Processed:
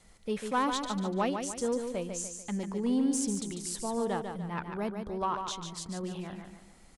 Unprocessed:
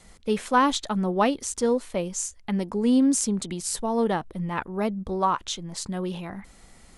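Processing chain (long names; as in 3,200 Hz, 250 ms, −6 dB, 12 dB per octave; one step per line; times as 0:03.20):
soft clipping −12 dBFS, distortion −23 dB
repeating echo 146 ms, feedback 41%, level −6.5 dB
level −7.5 dB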